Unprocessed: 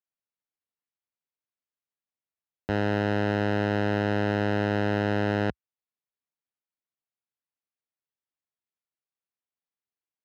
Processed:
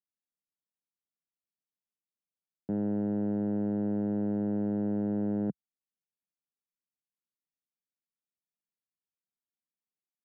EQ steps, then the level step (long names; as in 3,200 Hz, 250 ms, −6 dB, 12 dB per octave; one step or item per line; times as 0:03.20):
four-pole ladder band-pass 220 Hz, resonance 40%
+8.0 dB